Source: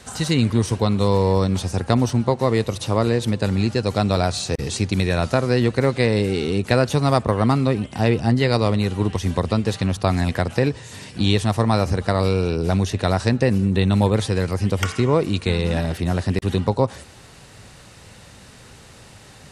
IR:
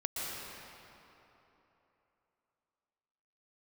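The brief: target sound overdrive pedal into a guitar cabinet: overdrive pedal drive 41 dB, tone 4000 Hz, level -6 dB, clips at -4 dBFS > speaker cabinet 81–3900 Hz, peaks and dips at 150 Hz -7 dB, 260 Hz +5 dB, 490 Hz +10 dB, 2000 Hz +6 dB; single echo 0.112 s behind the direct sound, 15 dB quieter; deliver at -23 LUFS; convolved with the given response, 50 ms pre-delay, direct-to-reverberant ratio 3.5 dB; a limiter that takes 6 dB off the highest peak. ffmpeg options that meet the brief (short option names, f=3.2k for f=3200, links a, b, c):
-filter_complex "[0:a]alimiter=limit=-7.5dB:level=0:latency=1,aecho=1:1:112:0.178,asplit=2[a][b];[1:a]atrim=start_sample=2205,adelay=50[c];[b][c]afir=irnorm=-1:irlink=0,volume=-8dB[d];[a][d]amix=inputs=2:normalize=0,asplit=2[e][f];[f]highpass=f=720:p=1,volume=41dB,asoftclip=type=tanh:threshold=-4dB[g];[e][g]amix=inputs=2:normalize=0,lowpass=f=4k:p=1,volume=-6dB,highpass=81,equalizer=f=150:t=q:w=4:g=-7,equalizer=f=260:t=q:w=4:g=5,equalizer=f=490:t=q:w=4:g=10,equalizer=f=2k:t=q:w=4:g=6,lowpass=f=3.9k:w=0.5412,lowpass=f=3.9k:w=1.3066,volume=-16dB"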